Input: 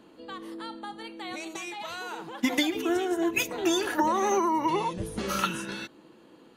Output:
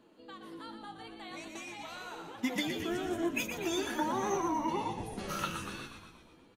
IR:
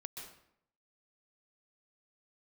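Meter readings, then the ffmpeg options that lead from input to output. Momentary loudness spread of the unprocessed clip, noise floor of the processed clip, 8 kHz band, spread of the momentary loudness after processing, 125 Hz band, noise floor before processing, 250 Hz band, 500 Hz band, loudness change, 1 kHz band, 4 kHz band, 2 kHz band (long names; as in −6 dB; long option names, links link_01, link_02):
14 LU, −60 dBFS, −7.0 dB, 15 LU, −3.5 dB, −55 dBFS, −6.5 dB, −7.5 dB, −7.0 dB, −7.5 dB, −7.0 dB, −7.0 dB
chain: -filter_complex "[0:a]asplit=9[link_01][link_02][link_03][link_04][link_05][link_06][link_07][link_08][link_09];[link_02]adelay=119,afreqshift=-54,volume=-7dB[link_10];[link_03]adelay=238,afreqshift=-108,volume=-11.6dB[link_11];[link_04]adelay=357,afreqshift=-162,volume=-16.2dB[link_12];[link_05]adelay=476,afreqshift=-216,volume=-20.7dB[link_13];[link_06]adelay=595,afreqshift=-270,volume=-25.3dB[link_14];[link_07]adelay=714,afreqshift=-324,volume=-29.9dB[link_15];[link_08]adelay=833,afreqshift=-378,volume=-34.5dB[link_16];[link_09]adelay=952,afreqshift=-432,volume=-39.1dB[link_17];[link_01][link_10][link_11][link_12][link_13][link_14][link_15][link_16][link_17]amix=inputs=9:normalize=0,flanger=delay=7.6:depth=6.4:regen=56:speed=1.2:shape=triangular,volume=-4dB"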